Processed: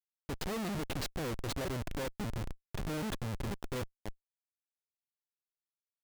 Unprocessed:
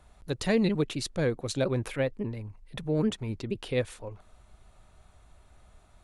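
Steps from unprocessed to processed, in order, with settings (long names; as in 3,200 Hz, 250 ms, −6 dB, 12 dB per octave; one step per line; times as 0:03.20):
0:02.34–0:03.49: steady tone 1,700 Hz −42 dBFS
comparator with hysteresis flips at −33 dBFS
level −4 dB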